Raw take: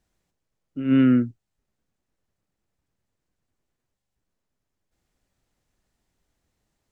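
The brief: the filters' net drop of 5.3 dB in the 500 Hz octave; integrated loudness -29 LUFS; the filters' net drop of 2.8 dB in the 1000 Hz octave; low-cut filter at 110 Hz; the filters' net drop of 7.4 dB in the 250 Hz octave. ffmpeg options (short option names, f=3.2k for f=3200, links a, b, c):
-af "highpass=110,equalizer=f=250:t=o:g=-6.5,equalizer=f=500:t=o:g=-3.5,equalizer=f=1k:t=o:g=-4,volume=-2dB"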